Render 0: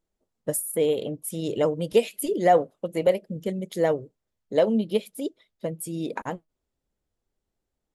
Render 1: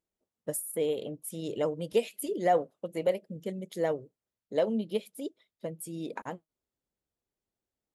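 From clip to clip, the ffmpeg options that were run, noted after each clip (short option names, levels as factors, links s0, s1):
-af "highpass=f=100:p=1,volume=0.473"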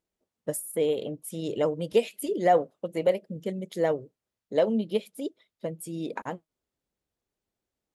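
-af "highshelf=f=9800:g=-7,volume=1.58"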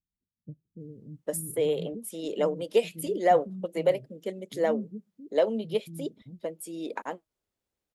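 -filter_complex "[0:a]acrossover=split=220[s0][s1];[s1]adelay=800[s2];[s0][s2]amix=inputs=2:normalize=0"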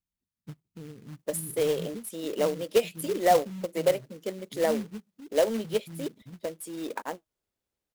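-af "acrusher=bits=3:mode=log:mix=0:aa=0.000001"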